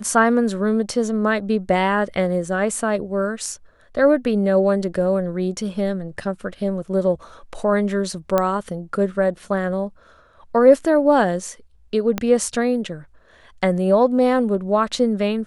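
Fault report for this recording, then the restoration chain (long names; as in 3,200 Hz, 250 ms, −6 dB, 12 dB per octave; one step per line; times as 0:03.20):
0:08.38: click −6 dBFS
0:12.18: click −8 dBFS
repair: click removal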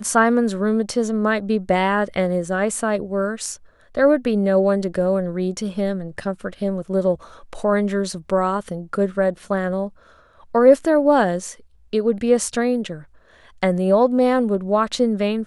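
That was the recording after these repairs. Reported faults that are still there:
0:12.18: click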